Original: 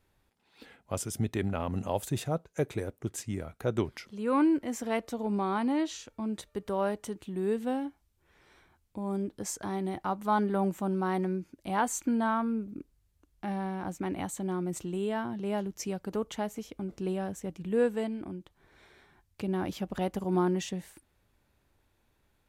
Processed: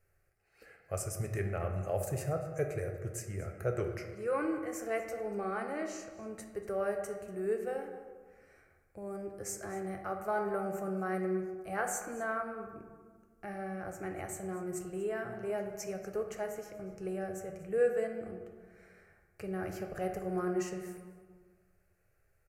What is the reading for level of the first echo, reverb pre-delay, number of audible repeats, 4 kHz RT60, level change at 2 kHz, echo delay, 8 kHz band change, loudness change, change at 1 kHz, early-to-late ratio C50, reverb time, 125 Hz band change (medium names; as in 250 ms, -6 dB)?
-18.0 dB, 5 ms, 1, 0.80 s, -1.0 dB, 239 ms, -3.5 dB, -4.5 dB, -6.5 dB, 6.0 dB, 1.6 s, -4.0 dB